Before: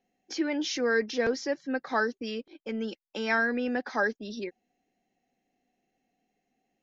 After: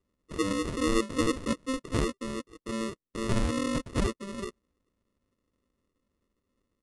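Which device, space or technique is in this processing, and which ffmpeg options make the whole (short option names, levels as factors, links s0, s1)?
crushed at another speed: -af "asetrate=88200,aresample=44100,acrusher=samples=28:mix=1:aa=0.000001,asetrate=22050,aresample=44100"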